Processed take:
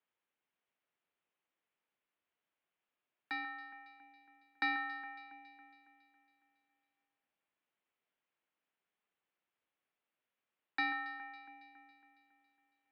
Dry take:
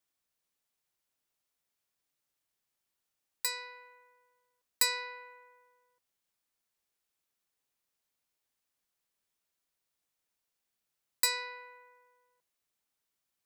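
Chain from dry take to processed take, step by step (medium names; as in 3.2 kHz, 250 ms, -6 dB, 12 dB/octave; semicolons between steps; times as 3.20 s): mistuned SSB -220 Hz 400–3200 Hz; echo whose repeats swap between lows and highs 144 ms, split 2.1 kHz, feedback 72%, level -11.5 dB; speed mistake 24 fps film run at 25 fps; trim +1 dB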